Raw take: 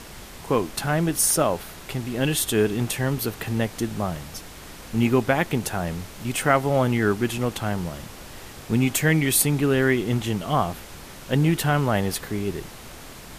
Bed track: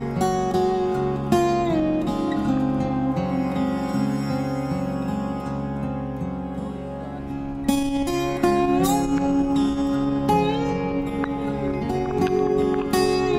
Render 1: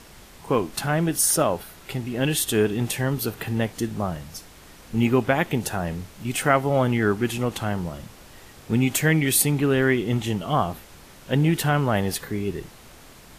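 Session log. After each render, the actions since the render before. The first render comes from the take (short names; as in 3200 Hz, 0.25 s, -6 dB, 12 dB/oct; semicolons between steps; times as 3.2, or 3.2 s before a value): noise print and reduce 6 dB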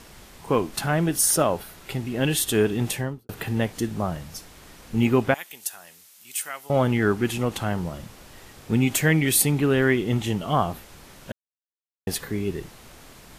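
2.89–3.29 studio fade out; 5.34–6.7 differentiator; 11.32–12.07 mute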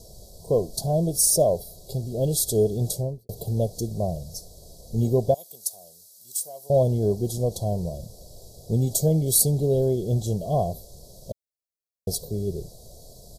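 elliptic band-stop 730–4300 Hz, stop band 40 dB; comb 1.8 ms, depth 66%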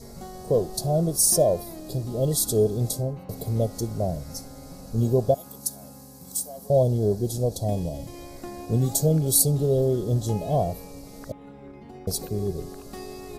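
add bed track -19 dB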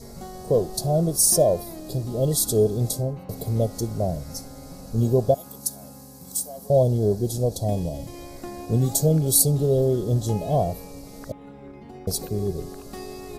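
gain +1.5 dB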